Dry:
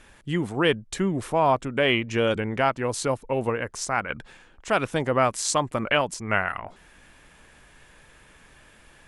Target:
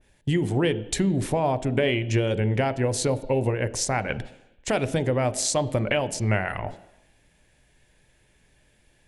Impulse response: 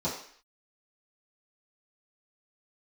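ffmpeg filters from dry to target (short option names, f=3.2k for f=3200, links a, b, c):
-filter_complex "[0:a]agate=range=-16dB:threshold=-43dB:ratio=16:detection=peak,equalizer=f=1.2k:w=1.8:g=-13,acompressor=threshold=-29dB:ratio=5,asplit=2[a][b];[1:a]atrim=start_sample=2205,asetrate=29106,aresample=44100,lowpass=5k[c];[b][c]afir=irnorm=-1:irlink=0,volume=-21.5dB[d];[a][d]amix=inputs=2:normalize=0,adynamicequalizer=threshold=0.00447:dfrequency=2100:dqfactor=0.7:tfrequency=2100:tqfactor=0.7:attack=5:release=100:ratio=0.375:range=1.5:mode=cutabove:tftype=highshelf,volume=8.5dB"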